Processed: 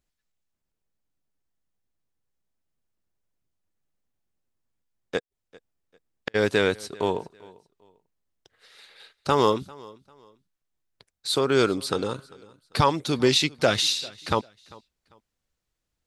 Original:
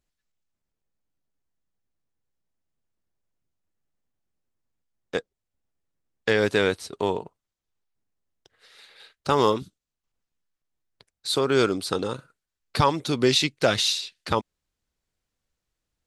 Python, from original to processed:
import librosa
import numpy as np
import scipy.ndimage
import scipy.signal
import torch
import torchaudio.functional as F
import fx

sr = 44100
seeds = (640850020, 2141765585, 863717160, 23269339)

y = fx.gate_flip(x, sr, shuts_db=-17.0, range_db=-41, at=(5.18, 6.34), fade=0.02)
y = fx.echo_feedback(y, sr, ms=396, feedback_pct=29, wet_db=-23)